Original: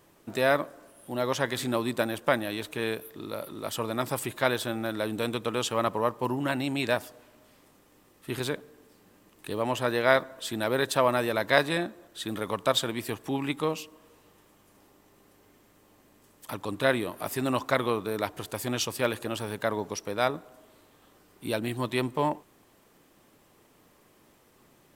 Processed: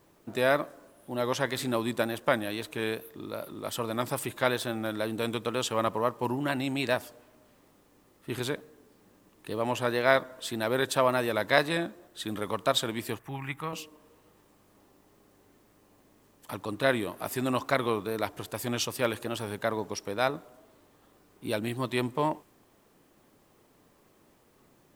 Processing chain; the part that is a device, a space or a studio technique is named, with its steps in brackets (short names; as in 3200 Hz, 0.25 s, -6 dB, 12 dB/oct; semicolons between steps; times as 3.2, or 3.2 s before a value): plain cassette with noise reduction switched in (mismatched tape noise reduction decoder only; wow and flutter; white noise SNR 40 dB); 13.19–13.73 graphic EQ 125/250/500/2000/4000/8000 Hz +4/-11/-9/+4/-10/-6 dB; gain -1 dB